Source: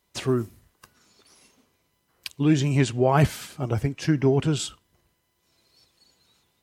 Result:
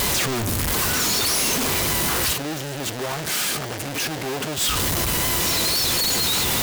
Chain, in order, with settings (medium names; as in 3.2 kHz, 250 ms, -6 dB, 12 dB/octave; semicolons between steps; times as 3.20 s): one-bit comparator; 2.33–4.58 s: high-pass 140 Hz 12 dB/octave; peak limiter -25.5 dBFS, peak gain reduction 6.5 dB; vibrato 4.4 Hz 37 cents; bit crusher 6-bit; trim +5.5 dB